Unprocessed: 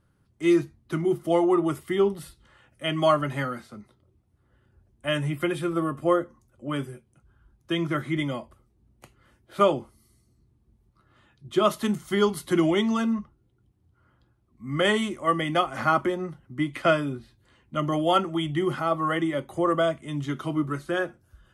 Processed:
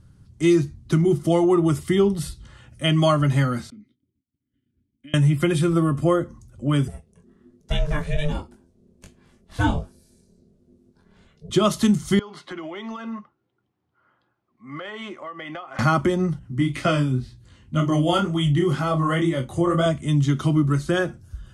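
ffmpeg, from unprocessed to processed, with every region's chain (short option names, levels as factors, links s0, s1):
-filter_complex "[0:a]asettb=1/sr,asplit=3[s0][s1][s2];[s0]atrim=end=3.704[s3];[s1]atrim=start=3.7:end=5.14,asetpts=PTS-STARTPTS,afade=t=in:d=0.004:c=qsin,afade=t=out:st=1.436:d=0.004:c=qsin,agate=range=0.0224:threshold=0.00126:ratio=3:release=100:detection=peak,acompressor=threshold=0.01:ratio=3:attack=3.2:release=140:knee=1:detection=peak,asplit=3[s4][s5][s6];[s4]bandpass=f=270:t=q:w=8,volume=1[s7];[s5]bandpass=f=2290:t=q:w=8,volume=0.501[s8];[s6]bandpass=f=3010:t=q:w=8,volume=0.355[s9];[s7][s8][s9]amix=inputs=3:normalize=0[s10];[s2]atrim=start=5.136[s11];[s3][s10]acrossfade=d=0.004:c1=hsin:c2=qsin[s12];[s12][s11]acrossfade=d=0.004:c1=qsin:c2=hsin,asettb=1/sr,asplit=3[s13][s14][s15];[s13]atrim=end=6.884[s16];[s14]atrim=start=6.88:end=11.5,asetpts=PTS-STARTPTS,afade=t=in:d=0.004:c=qsin,afade=t=out:st=4.616:d=0.004:c=qsin,flanger=delay=19:depth=4.9:speed=1.3,aeval=exprs='val(0)*sin(2*PI*300*n/s)':c=same[s17];[s15]atrim=start=11.496[s18];[s16][s17]acrossfade=d=0.004:c1=hsin:c2=qsin[s19];[s19][s18]acrossfade=d=0.004:c1=qsin:c2=hsin,asettb=1/sr,asplit=3[s20][s21][s22];[s20]atrim=end=12.194[s23];[s21]atrim=start=12.19:end=15.79,asetpts=PTS-STARTPTS,afade=t=in:d=0.004:c=qsin,afade=t=out:st=3.596:d=0.004:c=qsin,highpass=620,lowpass=2100,acompressor=threshold=0.0141:ratio=8:attack=3.2:release=140:knee=1:detection=peak[s24];[s22]atrim=start=15.786[s25];[s23][s24]acrossfade=d=0.004:c1=hsin:c2=qsin[s26];[s26][s25]acrossfade=d=0.004:c1=qsin:c2=hsin,asettb=1/sr,asplit=3[s27][s28][s29];[s27]atrim=end=16.394[s30];[s28]atrim=start=16.39:end=19.86,asetpts=PTS-STARTPTS,afade=t=in:d=0.004:c=qsin,afade=t=out:st=3.466:d=0.004:c=qsin,flanger=delay=16:depth=7.7:speed=2,asplit=2[s31][s32];[s32]adelay=32,volume=0.282[s33];[s31][s33]amix=inputs=2:normalize=0,atrim=end_sample=153027[s34];[s29]atrim=start=19.856[s35];[s30][s34]acrossfade=d=0.004:c1=hsin:c2=qsin[s36];[s36][s35]acrossfade=d=0.004:c1=qsin:c2=hsin,lowpass=7200,bass=f=250:g=13,treble=f=4000:g=13,acompressor=threshold=0.0794:ratio=2,volume=1.68"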